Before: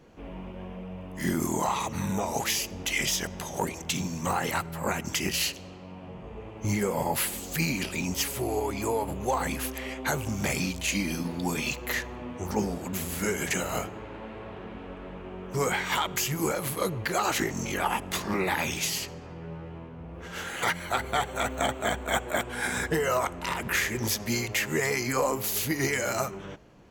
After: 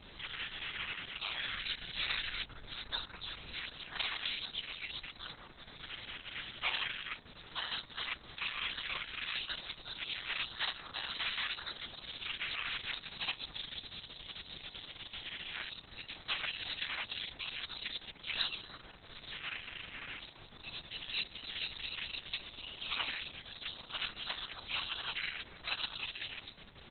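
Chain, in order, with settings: outdoor echo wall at 46 m, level -19 dB; spectral gate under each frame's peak -30 dB weak; tilt +3.5 dB/oct; compressor 1.5:1, threshold -45 dBFS, peak gain reduction 7 dB; added noise pink -68 dBFS; 1.47–3.54 low shelf 100 Hz +8 dB; gain +15 dB; Opus 6 kbps 48000 Hz

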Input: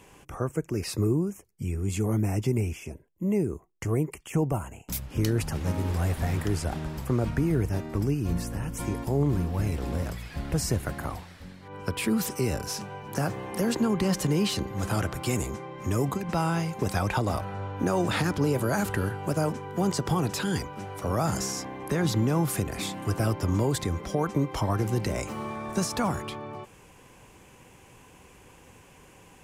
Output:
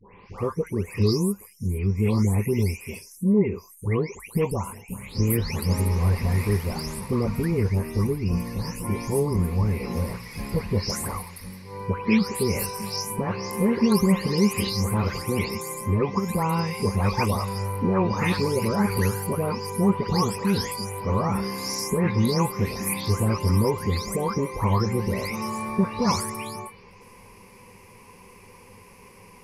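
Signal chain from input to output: spectral delay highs late, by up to 0.376 s; ripple EQ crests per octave 0.87, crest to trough 12 dB; gain +2.5 dB

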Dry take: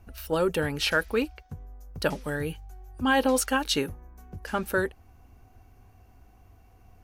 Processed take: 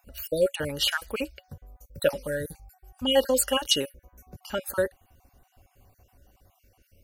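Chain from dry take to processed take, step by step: random spectral dropouts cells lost 40%; high shelf 4000 Hz +12 dB; small resonant body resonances 560/2900 Hz, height 16 dB, ringing for 90 ms; gain -3.5 dB

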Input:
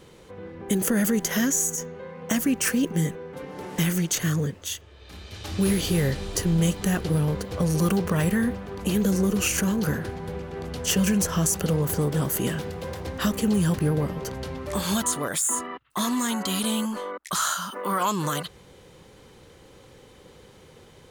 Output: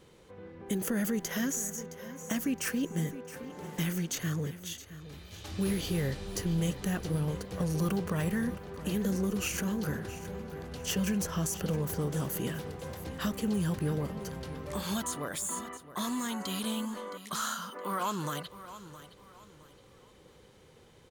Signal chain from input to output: dynamic EQ 8600 Hz, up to -4 dB, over -41 dBFS, Q 1.4; on a send: feedback echo 0.667 s, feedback 33%, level -14.5 dB; on the sum: gain -8 dB

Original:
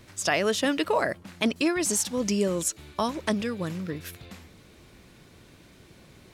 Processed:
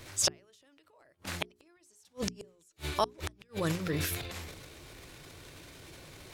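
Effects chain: high shelf 3900 Hz +3.5 dB; transient shaper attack -4 dB, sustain +10 dB; flipped gate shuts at -17 dBFS, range -41 dB; bell 210 Hz -11.5 dB 0.4 oct; notches 60/120/180/240/300/360/420 Hz; gain +2.5 dB

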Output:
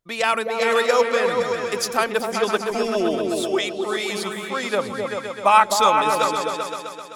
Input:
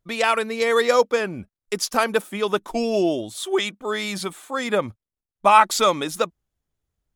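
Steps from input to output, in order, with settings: low shelf 220 Hz -9.5 dB; repeats that get brighter 0.129 s, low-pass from 200 Hz, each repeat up 2 oct, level 0 dB

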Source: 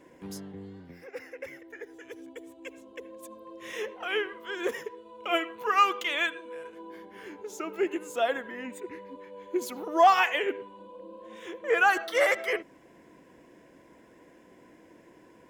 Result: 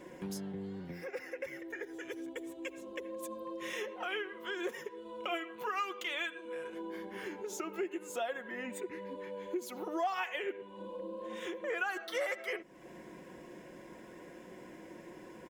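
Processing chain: comb 5.5 ms, depth 42%; compressor 3:1, threshold -43 dBFS, peak gain reduction 21.5 dB; gain +4 dB

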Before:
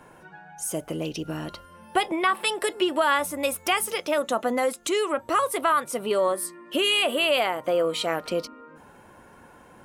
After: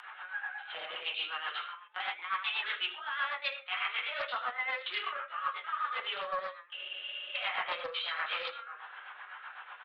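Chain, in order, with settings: LPC vocoder at 8 kHz pitch kept; HPF 1100 Hz 24 dB/oct; on a send: echo 79 ms -6.5 dB; on the sum: shoebox room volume 35 m³, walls mixed, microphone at 0.98 m; reverse; compressor 10:1, threshold -36 dBFS, peak gain reduction 23.5 dB; reverse; gate -56 dBFS, range -7 dB; upward compressor, threshold -46 dBFS; rotary speaker horn 8 Hz; spectral freeze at 6.79, 0.55 s; Doppler distortion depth 0.18 ms; gain +6.5 dB

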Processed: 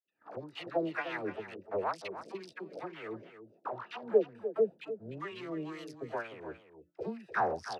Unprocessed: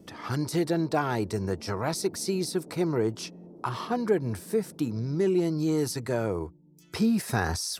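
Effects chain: Wiener smoothing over 41 samples; dispersion lows, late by 73 ms, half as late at 670 Hz; in parallel at +0.5 dB: compressor, threshold -33 dBFS, peak gain reduction 13 dB; on the sum: wah 2.1 Hz 530–3000 Hz, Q 4.3; gate -57 dBFS, range -18 dB; on a send: echo 0.299 s -11.5 dB; on the sum: AGC gain up to 5 dB

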